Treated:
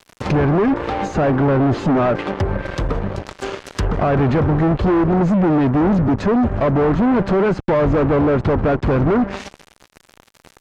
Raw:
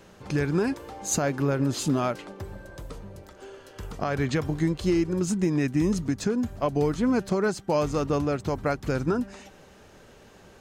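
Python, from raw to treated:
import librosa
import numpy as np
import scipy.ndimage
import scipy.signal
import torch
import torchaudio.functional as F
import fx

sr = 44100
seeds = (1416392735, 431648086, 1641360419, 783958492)

y = fx.fuzz(x, sr, gain_db=36.0, gate_db=-45.0)
y = fx.env_lowpass_down(y, sr, base_hz=1400.0, full_db=-14.5)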